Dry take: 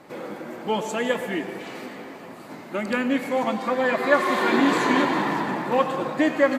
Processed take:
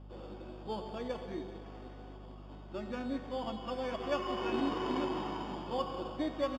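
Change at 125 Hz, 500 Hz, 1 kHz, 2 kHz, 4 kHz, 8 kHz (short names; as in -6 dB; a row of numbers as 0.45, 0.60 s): -8.5 dB, -13.5 dB, -14.5 dB, -21.5 dB, -11.5 dB, under -20 dB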